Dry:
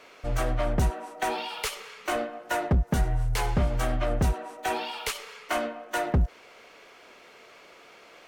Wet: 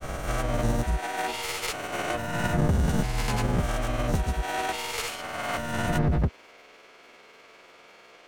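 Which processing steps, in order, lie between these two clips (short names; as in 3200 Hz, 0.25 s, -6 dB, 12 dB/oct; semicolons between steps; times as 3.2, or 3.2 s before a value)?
spectral swells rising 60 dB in 1.92 s; grains, pitch spread up and down by 0 st; gain -2.5 dB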